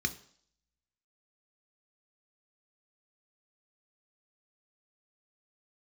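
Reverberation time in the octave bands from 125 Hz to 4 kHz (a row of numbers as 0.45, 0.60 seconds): 0.50, 0.55, 0.55, 0.60, 0.55, 0.70 seconds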